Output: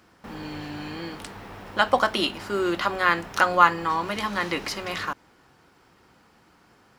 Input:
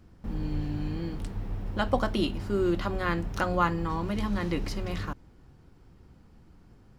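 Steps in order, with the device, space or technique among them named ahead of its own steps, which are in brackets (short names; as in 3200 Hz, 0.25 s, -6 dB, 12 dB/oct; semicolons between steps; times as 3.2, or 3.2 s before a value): filter by subtraction (in parallel: LPF 1300 Hz 12 dB/oct + phase invert); on the sum: gain +9 dB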